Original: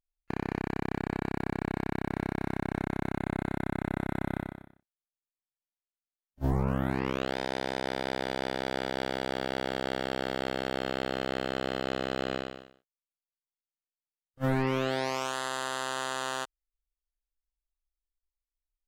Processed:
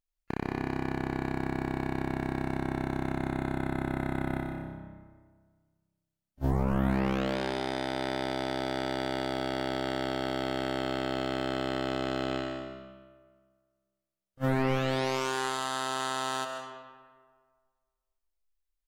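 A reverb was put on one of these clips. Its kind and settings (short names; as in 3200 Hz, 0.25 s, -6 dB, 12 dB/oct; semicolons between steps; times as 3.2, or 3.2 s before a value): digital reverb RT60 1.7 s, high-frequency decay 0.6×, pre-delay 95 ms, DRR 4.5 dB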